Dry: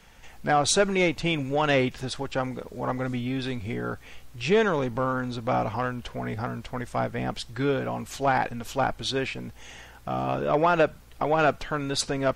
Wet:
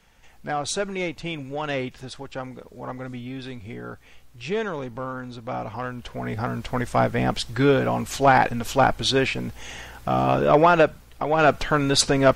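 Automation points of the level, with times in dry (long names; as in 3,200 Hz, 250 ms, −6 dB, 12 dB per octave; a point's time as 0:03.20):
0:05.58 −5 dB
0:06.75 +7 dB
0:10.52 +7 dB
0:11.25 0 dB
0:11.62 +8 dB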